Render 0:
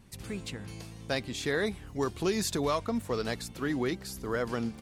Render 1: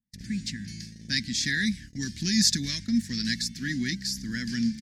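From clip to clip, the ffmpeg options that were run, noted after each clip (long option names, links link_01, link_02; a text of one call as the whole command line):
ffmpeg -i in.wav -af "firequalizer=gain_entry='entry(100,0);entry(220,10);entry(440,-27);entry(700,-28);entry(1200,-28);entry(1700,6);entry(2700,-7);entry(5100,9);entry(8800,-5);entry(14000,-10)':delay=0.05:min_phase=1,agate=range=-36dB:threshold=-41dB:ratio=16:detection=peak,adynamicequalizer=threshold=0.00447:dfrequency=1900:dqfactor=0.7:tfrequency=1900:tqfactor=0.7:attack=5:release=100:ratio=0.375:range=4:mode=boostabove:tftype=highshelf" out.wav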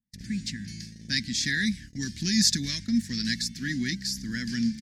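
ffmpeg -i in.wav -af anull out.wav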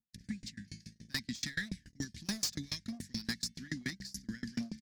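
ffmpeg -i in.wav -af "volume=23.5dB,asoftclip=hard,volume=-23.5dB,aeval=exprs='val(0)*pow(10,-30*if(lt(mod(7*n/s,1),2*abs(7)/1000),1-mod(7*n/s,1)/(2*abs(7)/1000),(mod(7*n/s,1)-2*abs(7)/1000)/(1-2*abs(7)/1000))/20)':channel_layout=same,volume=-1.5dB" out.wav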